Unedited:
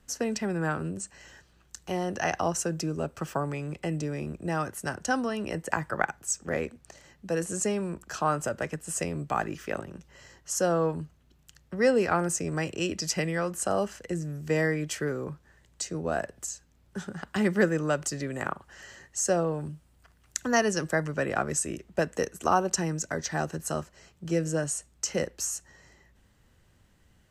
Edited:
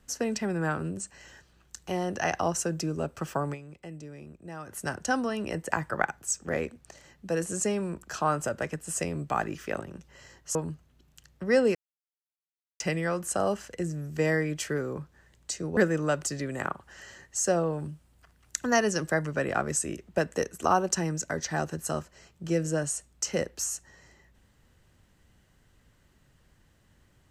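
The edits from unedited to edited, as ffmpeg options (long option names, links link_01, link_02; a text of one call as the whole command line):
ffmpeg -i in.wav -filter_complex "[0:a]asplit=7[link_01][link_02][link_03][link_04][link_05][link_06][link_07];[link_01]atrim=end=3.77,asetpts=PTS-STARTPTS,afade=type=out:start_time=3.53:duration=0.24:curve=exp:silence=0.266073[link_08];[link_02]atrim=start=3.77:end=4.48,asetpts=PTS-STARTPTS,volume=-11.5dB[link_09];[link_03]atrim=start=4.48:end=10.552,asetpts=PTS-STARTPTS,afade=type=in:duration=0.24:curve=exp:silence=0.266073[link_10];[link_04]atrim=start=10.858:end=12.06,asetpts=PTS-STARTPTS,afade=type=out:start_time=1.198:duration=0.004:curve=hsin[link_11];[link_05]atrim=start=12.06:end=13.11,asetpts=PTS-STARTPTS,volume=0[link_12];[link_06]atrim=start=13.11:end=16.082,asetpts=PTS-STARTPTS,afade=type=in:duration=0.004:curve=hsin[link_13];[link_07]atrim=start=17.578[link_14];[link_08][link_09][link_10]concat=n=3:v=0:a=1[link_15];[link_11][link_12][link_13]concat=n=3:v=0:a=1[link_16];[link_15][link_16]acrossfade=duration=0.004:curve1=hsin:curve2=hsin[link_17];[link_17][link_14]acrossfade=duration=0.004:curve1=hsin:curve2=hsin" out.wav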